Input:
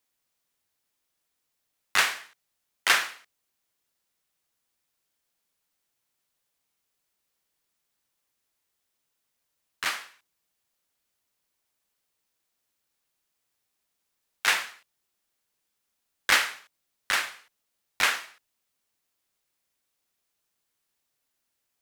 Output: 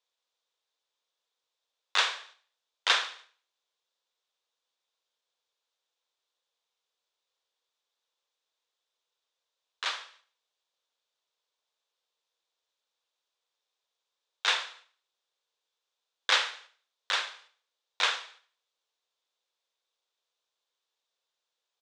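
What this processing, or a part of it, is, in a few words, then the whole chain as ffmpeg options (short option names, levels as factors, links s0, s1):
phone speaker on a table: -af "highpass=f=400:w=0.5412,highpass=f=400:w=1.3066,equalizer=f=490:t=q:w=4:g=6,equalizer=f=1000:t=q:w=4:g=4,equalizer=f=2000:t=q:w=4:g=-4,equalizer=f=3600:t=q:w=4:g=9,lowpass=f=6900:w=0.5412,lowpass=f=6900:w=1.3066,aecho=1:1:73|146|219|292:0.1|0.049|0.024|0.0118,volume=0.596"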